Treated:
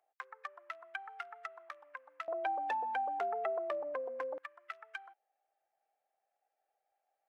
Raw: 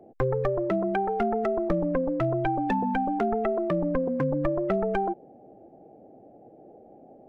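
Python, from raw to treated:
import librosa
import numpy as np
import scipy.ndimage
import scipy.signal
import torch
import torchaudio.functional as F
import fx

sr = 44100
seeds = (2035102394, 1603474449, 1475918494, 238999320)

y = fx.highpass(x, sr, hz=fx.steps((0.0, 1200.0), (2.28, 570.0), (4.38, 1400.0)), slope=24)
y = y * 10.0 ** (-6.0 / 20.0)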